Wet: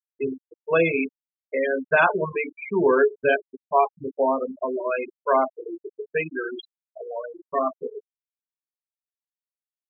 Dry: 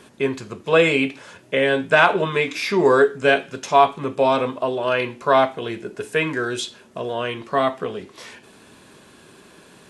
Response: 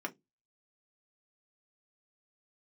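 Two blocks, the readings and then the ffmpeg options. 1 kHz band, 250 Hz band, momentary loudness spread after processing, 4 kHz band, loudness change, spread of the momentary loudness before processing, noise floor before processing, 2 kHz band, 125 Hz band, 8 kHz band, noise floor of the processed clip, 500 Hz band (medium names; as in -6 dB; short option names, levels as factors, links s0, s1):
-5.0 dB, -5.0 dB, 17 LU, under -15 dB, -4.0 dB, 14 LU, -50 dBFS, -5.0 dB, -8.5 dB, under -40 dB, under -85 dBFS, -4.0 dB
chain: -filter_complex "[0:a]asplit=2[s0][s1];[1:a]atrim=start_sample=2205,adelay=21[s2];[s1][s2]afir=irnorm=-1:irlink=0,volume=0.224[s3];[s0][s3]amix=inputs=2:normalize=0,aeval=exprs='0.944*(cos(1*acos(clip(val(0)/0.944,-1,1)))-cos(1*PI/2))+0.015*(cos(3*acos(clip(val(0)/0.944,-1,1)))-cos(3*PI/2))':c=same,afftfilt=real='re*gte(hypot(re,im),0.251)':imag='im*gte(hypot(re,im),0.251)':win_size=1024:overlap=0.75,volume=0.668"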